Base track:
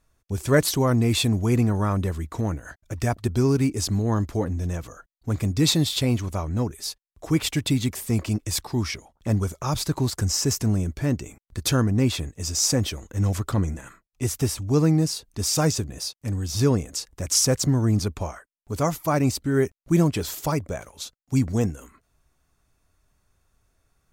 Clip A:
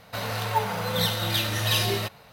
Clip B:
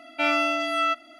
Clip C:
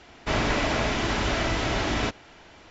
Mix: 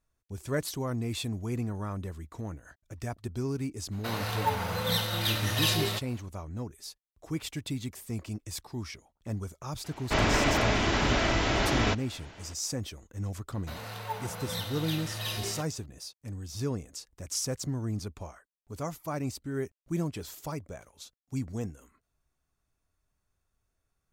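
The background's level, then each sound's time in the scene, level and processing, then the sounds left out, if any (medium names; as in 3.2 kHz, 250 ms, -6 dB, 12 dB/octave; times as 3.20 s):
base track -12 dB
3.91 s: add A -3.5 dB, fades 0.02 s + peaking EQ 670 Hz -2.5 dB 0.26 oct
9.84 s: add C -0.5 dB
13.54 s: add A -11 dB
not used: B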